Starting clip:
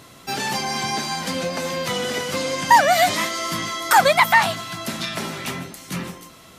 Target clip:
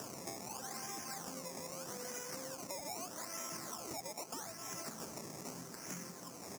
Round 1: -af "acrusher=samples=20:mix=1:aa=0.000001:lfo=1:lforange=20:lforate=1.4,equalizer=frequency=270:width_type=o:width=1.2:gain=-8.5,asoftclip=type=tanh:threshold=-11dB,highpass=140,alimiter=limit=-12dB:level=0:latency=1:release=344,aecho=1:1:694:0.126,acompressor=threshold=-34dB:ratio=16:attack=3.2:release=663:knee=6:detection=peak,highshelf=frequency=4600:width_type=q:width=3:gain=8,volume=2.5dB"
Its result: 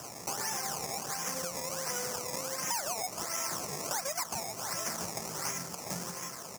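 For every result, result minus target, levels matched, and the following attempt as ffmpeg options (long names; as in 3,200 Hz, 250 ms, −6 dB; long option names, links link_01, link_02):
downward compressor: peak gain reduction −9 dB; 250 Hz band −6.0 dB; sample-and-hold swept by an LFO: distortion −9 dB
-af "acrusher=samples=20:mix=1:aa=0.000001:lfo=1:lforange=20:lforate=1.4,equalizer=frequency=270:width_type=o:width=1.2:gain=-8.5,asoftclip=type=tanh:threshold=-11dB,highpass=140,alimiter=limit=-12dB:level=0:latency=1:release=344,aecho=1:1:694:0.126,acompressor=threshold=-44dB:ratio=16:attack=3.2:release=663:knee=6:detection=peak,highshelf=frequency=4600:width_type=q:width=3:gain=8,volume=2.5dB"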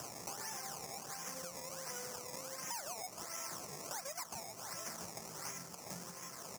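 250 Hz band −6.0 dB; sample-and-hold swept by an LFO: distortion −9 dB
-af "acrusher=samples=20:mix=1:aa=0.000001:lfo=1:lforange=20:lforate=1.4,asoftclip=type=tanh:threshold=-11dB,highpass=140,alimiter=limit=-12dB:level=0:latency=1:release=344,aecho=1:1:694:0.126,acompressor=threshold=-44dB:ratio=16:attack=3.2:release=663:knee=6:detection=peak,highshelf=frequency=4600:width_type=q:width=3:gain=8,volume=2.5dB"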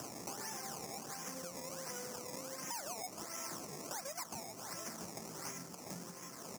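sample-and-hold swept by an LFO: distortion −9 dB
-af "acrusher=samples=20:mix=1:aa=0.000001:lfo=1:lforange=20:lforate=0.8,asoftclip=type=tanh:threshold=-11dB,highpass=140,alimiter=limit=-12dB:level=0:latency=1:release=344,aecho=1:1:694:0.126,acompressor=threshold=-44dB:ratio=16:attack=3.2:release=663:knee=6:detection=peak,highshelf=frequency=4600:width_type=q:width=3:gain=8,volume=2.5dB"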